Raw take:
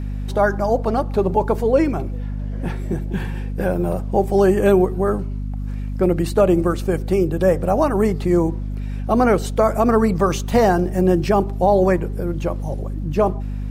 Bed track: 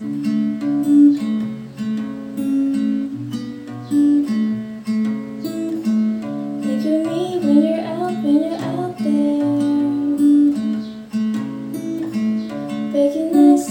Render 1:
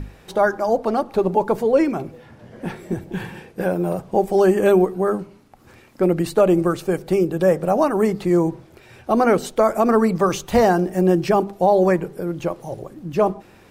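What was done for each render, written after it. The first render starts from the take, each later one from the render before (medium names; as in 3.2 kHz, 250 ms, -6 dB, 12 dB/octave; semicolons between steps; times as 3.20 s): hum notches 50/100/150/200/250 Hz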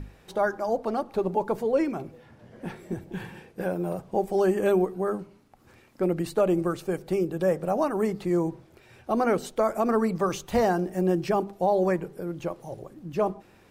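trim -7.5 dB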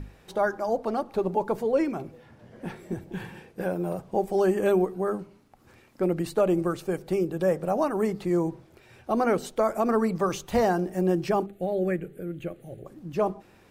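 11.46–12.86 s: static phaser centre 2.3 kHz, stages 4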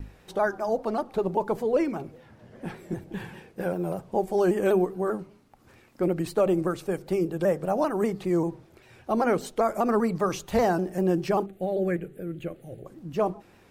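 vibrato with a chosen wave saw down 5.1 Hz, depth 100 cents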